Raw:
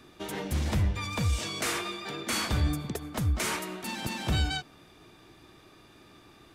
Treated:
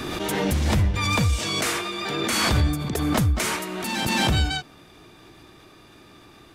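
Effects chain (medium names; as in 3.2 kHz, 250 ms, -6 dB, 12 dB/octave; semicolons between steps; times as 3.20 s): swell ahead of each attack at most 21 dB/s; trim +5 dB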